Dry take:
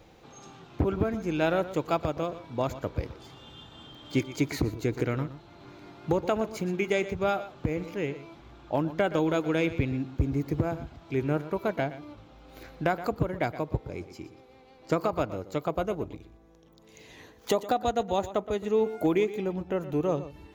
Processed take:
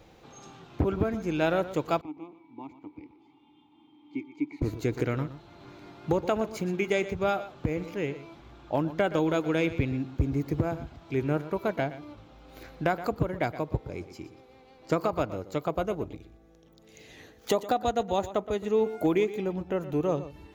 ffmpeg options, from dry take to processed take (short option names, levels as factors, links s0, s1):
-filter_complex "[0:a]asettb=1/sr,asplit=3[s0][s1][s2];[s0]atrim=end=2.014[s3];[s1]atrim=start=2.01:end=4.62,asetpts=PTS-STARTPTS,afade=t=in:d=0.004:c=qsin,afade=t=out:st=2.606:d=0.004:c=qsin,asplit=3[s4][s5][s6];[s4]bandpass=f=300:t=q:w=8,volume=1[s7];[s5]bandpass=f=870:t=q:w=8,volume=0.501[s8];[s6]bandpass=f=2240:t=q:w=8,volume=0.355[s9];[s7][s8][s9]amix=inputs=3:normalize=0[s10];[s2]atrim=start=4.616[s11];[s3][s10]acrossfade=d=0.004:c1=hsin:c2=qsin[s12];[s12][s11]acrossfade=d=0.004:c1=qsin:c2=hsin,asettb=1/sr,asplit=3[s13][s14][s15];[s13]atrim=end=16.094[s16];[s14]atrim=start=16.09:end=17.5,asetpts=PTS-STARTPTS,afade=t=in:d=0.004:c=qsin,afade=t=out:st=1.406:d=0.004:c=qsin,bandreject=f=1000:w=5[s17];[s15]atrim=start=17.496[s18];[s16][s17]acrossfade=d=0.004:c1=hsin:c2=qsin[s19];[s19][s18]acrossfade=d=0.004:c1=qsin:c2=hsin"